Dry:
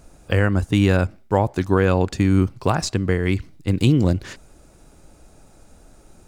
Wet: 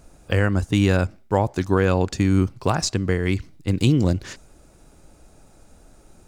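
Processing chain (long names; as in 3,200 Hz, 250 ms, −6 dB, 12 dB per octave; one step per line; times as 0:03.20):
dynamic equaliser 6,000 Hz, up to +5 dB, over −49 dBFS, Q 1.3
level −1.5 dB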